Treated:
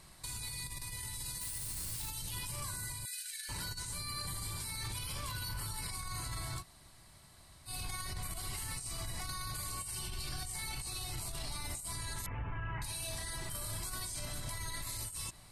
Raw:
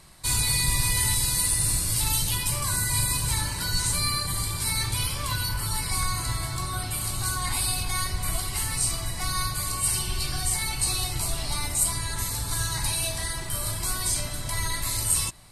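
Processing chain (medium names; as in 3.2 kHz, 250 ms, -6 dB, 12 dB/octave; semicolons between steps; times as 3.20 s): 12.26–12.82 s: steep low-pass 2.9 kHz 96 dB/octave; compressor with a negative ratio -28 dBFS, ratio -0.5; peak limiter -24 dBFS, peak gain reduction 10 dB; 1.40–2.08 s: added noise blue -39 dBFS; 3.05–3.49 s: brick-wall FIR high-pass 1.4 kHz; 6.61–7.68 s: room tone, crossfade 0.06 s; trim -7 dB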